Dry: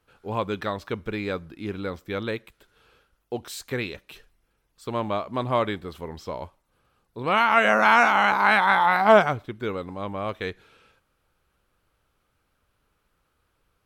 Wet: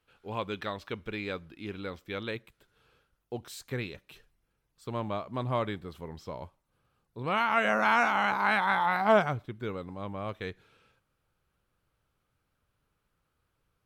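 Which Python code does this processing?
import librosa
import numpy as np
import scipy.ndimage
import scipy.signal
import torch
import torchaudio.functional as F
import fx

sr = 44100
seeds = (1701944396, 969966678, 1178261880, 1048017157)

y = fx.peak_eq(x, sr, hz=fx.steps((0.0, 2900.0), (2.35, 130.0)), db=6.0, octaves=1.2)
y = y * librosa.db_to_amplitude(-7.5)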